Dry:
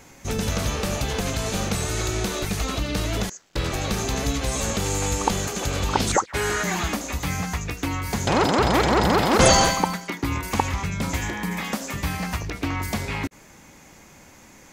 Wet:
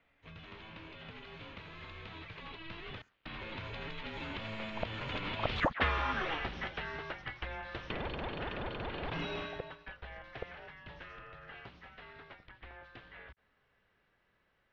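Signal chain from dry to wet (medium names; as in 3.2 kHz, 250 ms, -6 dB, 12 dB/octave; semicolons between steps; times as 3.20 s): Doppler pass-by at 5.80 s, 29 m/s, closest 1.8 m; compression 3:1, threshold -52 dBFS, peak gain reduction 20.5 dB; treble shelf 2.4 kHz +10.5 dB; mistuned SSB -320 Hz 230–3500 Hz; trim +16.5 dB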